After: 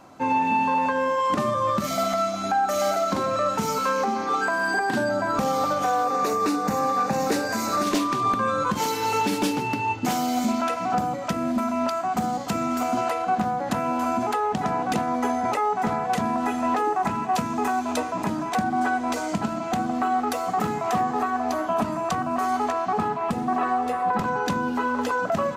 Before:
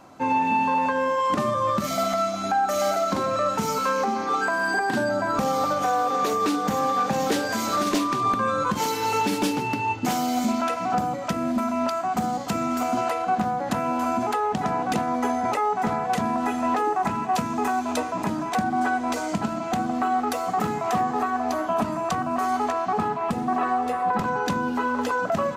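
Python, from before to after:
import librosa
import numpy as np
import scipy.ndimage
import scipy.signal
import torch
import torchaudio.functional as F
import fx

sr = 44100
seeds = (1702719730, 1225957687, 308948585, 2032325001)

y = fx.peak_eq(x, sr, hz=3200.0, db=-14.5, octaves=0.22, at=(6.04, 7.84))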